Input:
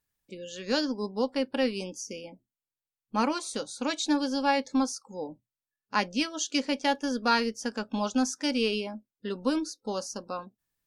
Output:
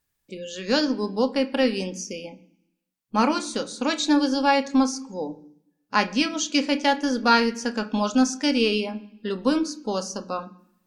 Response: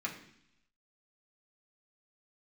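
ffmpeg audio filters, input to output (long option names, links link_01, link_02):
-filter_complex "[0:a]acrossover=split=8300[link_01][link_02];[link_02]acompressor=threshold=-58dB:ratio=4:attack=1:release=60[link_03];[link_01][link_03]amix=inputs=2:normalize=0,asplit=2[link_04][link_05];[1:a]atrim=start_sample=2205,adelay=28[link_06];[link_05][link_06]afir=irnorm=-1:irlink=0,volume=-12.5dB[link_07];[link_04][link_07]amix=inputs=2:normalize=0,volume=5.5dB"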